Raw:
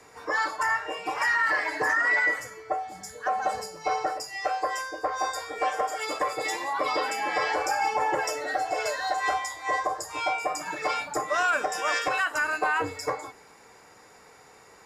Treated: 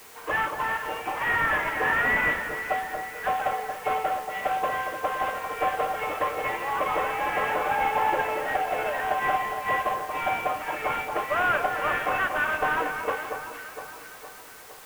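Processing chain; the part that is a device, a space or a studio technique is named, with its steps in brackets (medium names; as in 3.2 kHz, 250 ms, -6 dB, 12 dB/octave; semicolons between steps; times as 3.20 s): 0.58–1.27 s: dynamic bell 1.6 kHz, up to -4 dB, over -35 dBFS, Q 0.79; army field radio (band-pass 340–3200 Hz; CVSD coder 16 kbps; white noise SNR 21 dB); echo whose repeats swap between lows and highs 231 ms, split 1.4 kHz, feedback 72%, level -7 dB; trim +1.5 dB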